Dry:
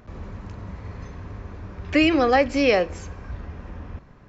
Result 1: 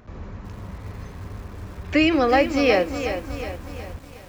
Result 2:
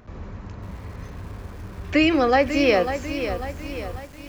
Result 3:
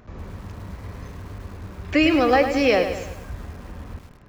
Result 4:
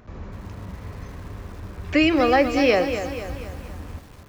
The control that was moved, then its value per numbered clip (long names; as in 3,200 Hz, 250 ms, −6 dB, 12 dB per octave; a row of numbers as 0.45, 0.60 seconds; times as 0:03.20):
feedback echo at a low word length, delay time: 366, 545, 104, 242 milliseconds